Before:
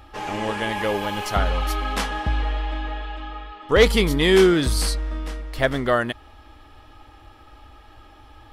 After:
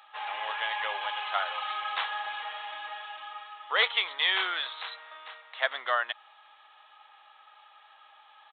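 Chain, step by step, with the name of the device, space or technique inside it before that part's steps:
0:03.89–0:05.62: high-pass filter 400 Hz 12 dB per octave
musical greeting card (downsampling to 8,000 Hz; high-pass filter 780 Hz 24 dB per octave; parametric band 4,000 Hz +8.5 dB 0.29 octaves)
level −3.5 dB

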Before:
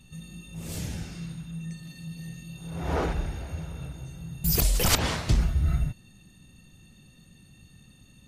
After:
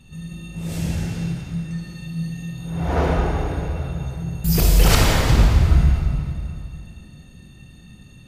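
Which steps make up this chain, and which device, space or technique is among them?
swimming-pool hall (convolution reverb RT60 2.6 s, pre-delay 23 ms, DRR −2 dB; high-shelf EQ 4,100 Hz −7 dB)
level +5 dB

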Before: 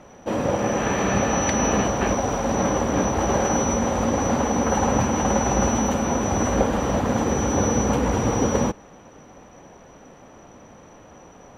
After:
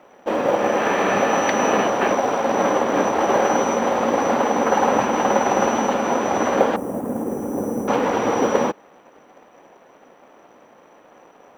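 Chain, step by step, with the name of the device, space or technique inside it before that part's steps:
phone line with mismatched companding (band-pass filter 330–3,400 Hz; mu-law and A-law mismatch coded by A)
0:06.76–0:07.88: drawn EQ curve 250 Hz 0 dB, 4,200 Hz −28 dB, 9,500 Hz +9 dB
level +6 dB

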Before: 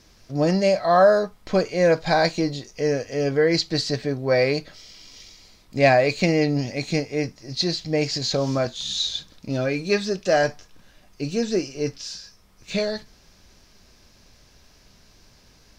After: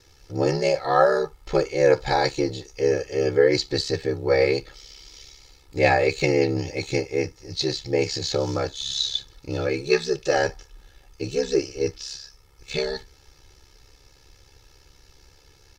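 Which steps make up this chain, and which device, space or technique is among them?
ring-modulated robot voice (ring modulation 34 Hz; comb filter 2.3 ms, depth 90%)

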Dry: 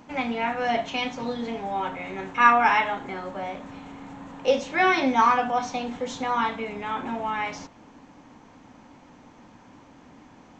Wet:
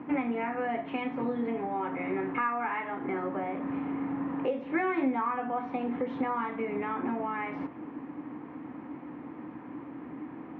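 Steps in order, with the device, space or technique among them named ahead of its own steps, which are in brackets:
bass amplifier (downward compressor 4 to 1, threshold −35 dBFS, peak gain reduction 19.5 dB; loudspeaker in its box 88–2,000 Hz, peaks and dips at 99 Hz −10 dB, 200 Hz −5 dB, 310 Hz +9 dB, 600 Hz −6 dB, 860 Hz −5 dB, 1,500 Hz −5 dB)
level +7 dB

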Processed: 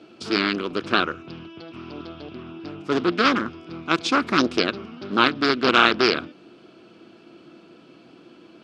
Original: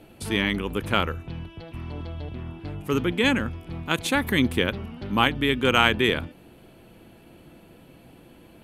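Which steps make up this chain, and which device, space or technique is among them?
full-range speaker at full volume (highs frequency-modulated by the lows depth 0.73 ms; loudspeaker in its box 240–6,300 Hz, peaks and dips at 340 Hz +5 dB, 530 Hz −5 dB, 860 Hz −7 dB, 1,300 Hz +6 dB, 1,900 Hz −7 dB, 5,100 Hz +7 dB)
level +3 dB

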